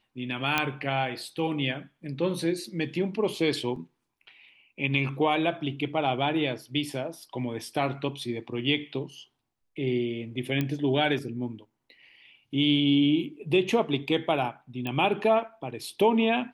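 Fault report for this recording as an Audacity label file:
0.580000	0.580000	pop -9 dBFS
3.760000	3.760000	dropout 2.7 ms
10.610000	10.610000	pop -15 dBFS
14.870000	14.870000	pop -19 dBFS

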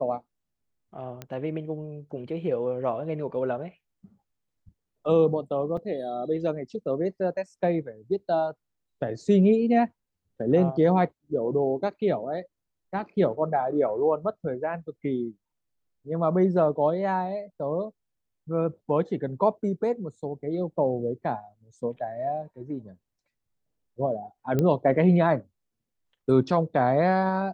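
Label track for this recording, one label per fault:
1.220000	1.220000	pop -21 dBFS
5.770000	5.770000	dropout 4.1 ms
24.590000	24.590000	pop -13 dBFS

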